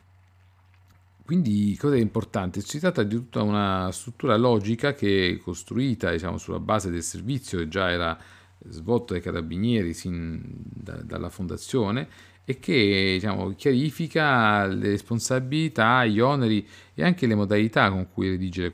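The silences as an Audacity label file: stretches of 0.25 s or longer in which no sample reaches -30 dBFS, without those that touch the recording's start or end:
8.140000	8.710000	silence
12.040000	12.490000	silence
16.600000	16.980000	silence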